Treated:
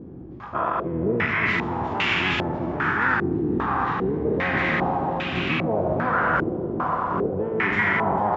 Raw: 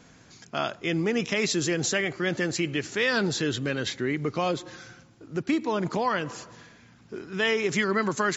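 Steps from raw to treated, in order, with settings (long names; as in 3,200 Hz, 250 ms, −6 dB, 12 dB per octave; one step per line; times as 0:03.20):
peak hold with a decay on every bin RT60 1.57 s
high-pass filter 110 Hz 6 dB per octave
parametric band 550 Hz −10.5 dB 0.47 octaves
hum removal 301.9 Hz, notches 20
in parallel at +0.5 dB: speech leveller 0.5 s
on the sum: brickwall limiter −10 dBFS, peak gain reduction 7 dB
reversed playback
downward compressor 6 to 1, threshold −29 dBFS, peak gain reduction 13 dB
reversed playback
pitch-shifted copies added −12 semitones 0 dB, −5 semitones −3 dB
feedback echo with a long and a short gap by turns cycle 778 ms, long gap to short 1.5 to 1, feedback 56%, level −6.5 dB
low-pass on a step sequencer 2.5 Hz 350–2,700 Hz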